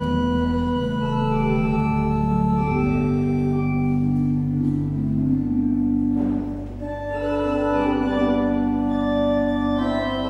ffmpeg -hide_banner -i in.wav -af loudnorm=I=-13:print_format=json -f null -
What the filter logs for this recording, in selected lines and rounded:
"input_i" : "-21.7",
"input_tp" : "-9.2",
"input_lra" : "1.4",
"input_thresh" : "-31.7",